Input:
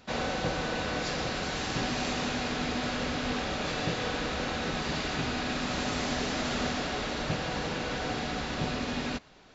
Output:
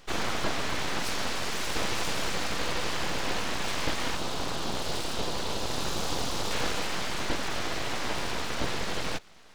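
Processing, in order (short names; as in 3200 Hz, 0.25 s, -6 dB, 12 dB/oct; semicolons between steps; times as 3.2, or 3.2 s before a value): 4.15–6.51 band shelf 1800 Hz -13.5 dB 1.1 oct; full-wave rectifier; gain +4 dB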